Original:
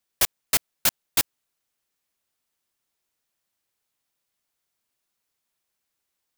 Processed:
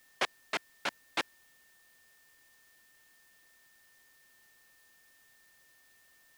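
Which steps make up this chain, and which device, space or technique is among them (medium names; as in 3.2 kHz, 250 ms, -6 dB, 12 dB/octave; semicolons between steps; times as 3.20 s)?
shortwave radio (band-pass 290–2500 Hz; tremolo 0.67 Hz, depth 37%; whistle 1.8 kHz -65 dBFS; white noise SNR 21 dB)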